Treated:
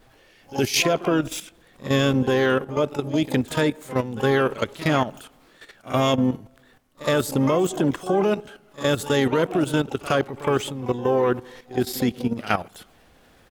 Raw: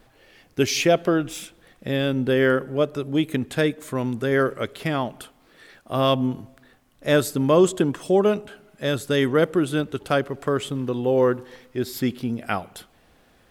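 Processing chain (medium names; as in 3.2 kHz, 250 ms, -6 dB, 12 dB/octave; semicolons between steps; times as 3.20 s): harmony voices -3 st -18 dB, +12 st -11 dB; level held to a coarse grid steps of 12 dB; pre-echo 66 ms -17 dB; trim +5 dB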